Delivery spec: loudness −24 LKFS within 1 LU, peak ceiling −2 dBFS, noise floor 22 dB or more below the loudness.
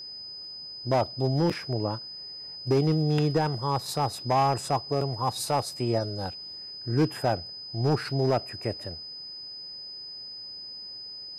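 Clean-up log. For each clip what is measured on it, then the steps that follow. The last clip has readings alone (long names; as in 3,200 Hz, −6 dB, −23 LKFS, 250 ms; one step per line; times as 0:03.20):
share of clipped samples 0.8%; peaks flattened at −17.0 dBFS; interfering tone 5,000 Hz; level of the tone −38 dBFS; integrated loudness −29.0 LKFS; sample peak −17.0 dBFS; target loudness −24.0 LKFS
→ clipped peaks rebuilt −17 dBFS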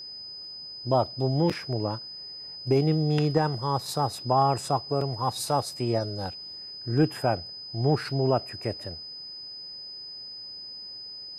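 share of clipped samples 0.0%; interfering tone 5,000 Hz; level of the tone −38 dBFS
→ notch filter 5,000 Hz, Q 30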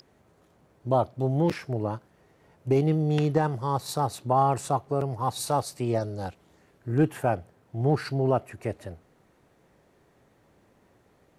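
interfering tone none found; integrated loudness −27.0 LKFS; sample peak −9.0 dBFS; target loudness −24.0 LKFS
→ level +3 dB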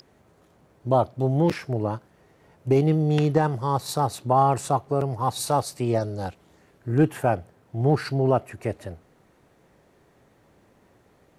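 integrated loudness −24.0 LKFS; sample peak −6.0 dBFS; background noise floor −60 dBFS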